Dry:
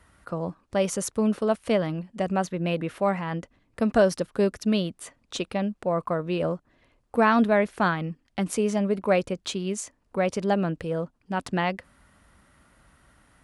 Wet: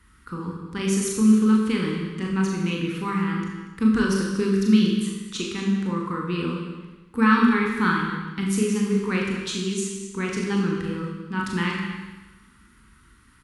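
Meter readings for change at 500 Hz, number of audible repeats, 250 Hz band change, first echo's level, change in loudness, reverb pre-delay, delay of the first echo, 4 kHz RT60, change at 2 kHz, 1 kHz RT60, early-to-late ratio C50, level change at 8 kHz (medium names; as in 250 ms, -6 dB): -4.5 dB, 2, +6.0 dB, -7.0 dB, +3.0 dB, 21 ms, 41 ms, 1.2 s, +4.0 dB, 1.2 s, 1.5 dB, +4.0 dB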